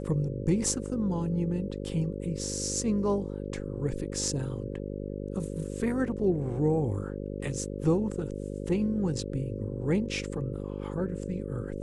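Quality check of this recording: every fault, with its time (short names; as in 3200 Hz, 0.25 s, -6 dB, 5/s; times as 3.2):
buzz 50 Hz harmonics 11 -36 dBFS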